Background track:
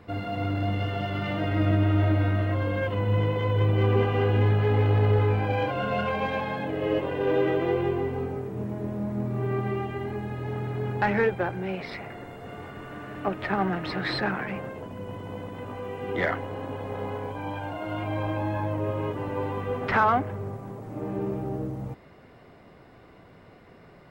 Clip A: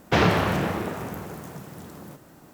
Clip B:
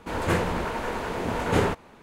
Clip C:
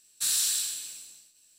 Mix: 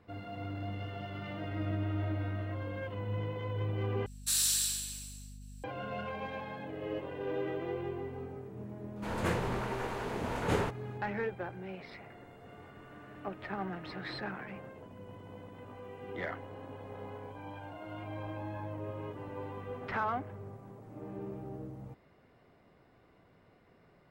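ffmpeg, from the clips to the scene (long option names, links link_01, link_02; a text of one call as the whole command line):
ffmpeg -i bed.wav -i cue0.wav -i cue1.wav -i cue2.wav -filter_complex "[0:a]volume=-12dB[link_01];[3:a]aeval=exprs='val(0)+0.00631*(sin(2*PI*50*n/s)+sin(2*PI*2*50*n/s)/2+sin(2*PI*3*50*n/s)/3+sin(2*PI*4*50*n/s)/4+sin(2*PI*5*50*n/s)/5)':channel_layout=same[link_02];[link_01]asplit=2[link_03][link_04];[link_03]atrim=end=4.064[link_05];[link_02]atrim=end=1.58,asetpts=PTS-STARTPTS,volume=-3dB[link_06];[link_04]atrim=start=5.636[link_07];[2:a]atrim=end=2.02,asetpts=PTS-STARTPTS,volume=-8dB,afade=type=in:duration=0.004:curve=hsin,afade=type=out:start_time=2.016:duration=0.004:curve=hsin,adelay=8960[link_08];[link_05][link_06]acrossfade=duration=0.004:curve1=hsin:curve2=hsin[link_09];[link_09][link_07]acrossfade=duration=0.004:curve1=hsin:curve2=hsin[link_10];[link_10][link_08]amix=inputs=2:normalize=0" out.wav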